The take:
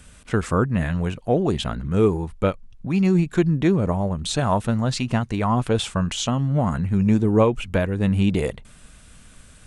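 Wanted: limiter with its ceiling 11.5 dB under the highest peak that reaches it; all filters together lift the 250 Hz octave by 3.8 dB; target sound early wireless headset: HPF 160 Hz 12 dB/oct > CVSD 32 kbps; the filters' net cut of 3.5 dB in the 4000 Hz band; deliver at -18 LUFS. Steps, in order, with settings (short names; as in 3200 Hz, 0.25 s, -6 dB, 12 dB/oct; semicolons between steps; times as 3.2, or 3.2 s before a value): bell 250 Hz +7 dB; bell 4000 Hz -4.5 dB; limiter -14.5 dBFS; HPF 160 Hz 12 dB/oct; CVSD 32 kbps; gain +8 dB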